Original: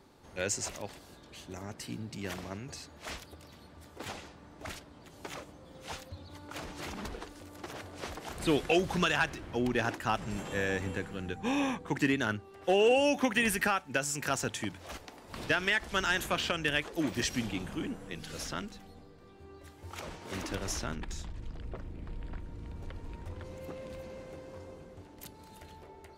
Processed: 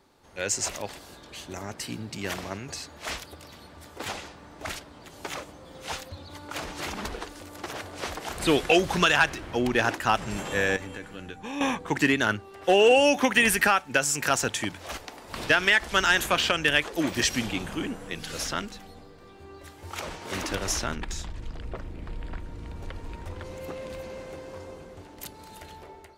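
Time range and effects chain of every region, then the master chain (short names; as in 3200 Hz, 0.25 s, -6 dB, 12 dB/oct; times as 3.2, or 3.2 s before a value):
10.76–11.61 compressor 3:1, threshold -33 dBFS + resonator 290 Hz, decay 0.15 s
whole clip: low shelf 91 Hz +6.5 dB; AGC gain up to 8.5 dB; low shelf 290 Hz -9 dB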